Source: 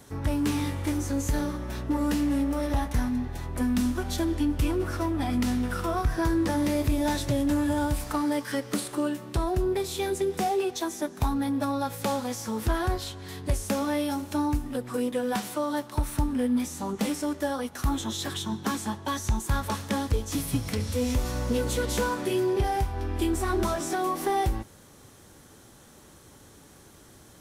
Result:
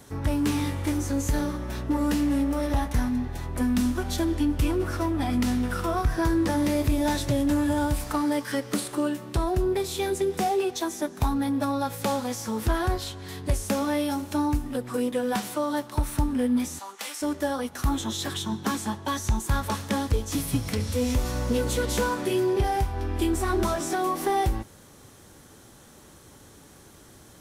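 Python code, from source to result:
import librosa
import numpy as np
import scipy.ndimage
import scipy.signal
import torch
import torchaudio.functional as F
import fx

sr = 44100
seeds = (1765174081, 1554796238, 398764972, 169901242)

y = fx.highpass(x, sr, hz=1100.0, slope=12, at=(16.79, 17.22))
y = F.gain(torch.from_numpy(y), 1.5).numpy()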